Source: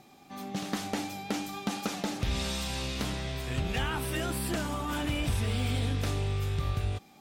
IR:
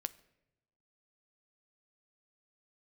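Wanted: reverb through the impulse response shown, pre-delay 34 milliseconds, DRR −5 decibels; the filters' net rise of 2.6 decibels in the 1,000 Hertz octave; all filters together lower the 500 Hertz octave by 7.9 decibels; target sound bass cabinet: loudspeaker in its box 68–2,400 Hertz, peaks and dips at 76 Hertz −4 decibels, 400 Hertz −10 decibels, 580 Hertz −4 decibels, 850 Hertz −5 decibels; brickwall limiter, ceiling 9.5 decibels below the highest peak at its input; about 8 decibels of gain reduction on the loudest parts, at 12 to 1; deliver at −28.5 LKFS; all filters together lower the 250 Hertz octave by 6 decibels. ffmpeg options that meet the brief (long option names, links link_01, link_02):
-filter_complex "[0:a]equalizer=frequency=250:width_type=o:gain=-6,equalizer=frequency=500:width_type=o:gain=-4,equalizer=frequency=1000:width_type=o:gain=8.5,acompressor=threshold=-34dB:ratio=12,alimiter=level_in=6dB:limit=-24dB:level=0:latency=1,volume=-6dB,asplit=2[link_01][link_02];[1:a]atrim=start_sample=2205,adelay=34[link_03];[link_02][link_03]afir=irnorm=-1:irlink=0,volume=6.5dB[link_04];[link_01][link_04]amix=inputs=2:normalize=0,highpass=frequency=68:width=0.5412,highpass=frequency=68:width=1.3066,equalizer=frequency=76:width_type=q:width=4:gain=-4,equalizer=frequency=400:width_type=q:width=4:gain=-10,equalizer=frequency=580:width_type=q:width=4:gain=-4,equalizer=frequency=850:width_type=q:width=4:gain=-5,lowpass=frequency=2400:width=0.5412,lowpass=frequency=2400:width=1.3066,volume=8.5dB"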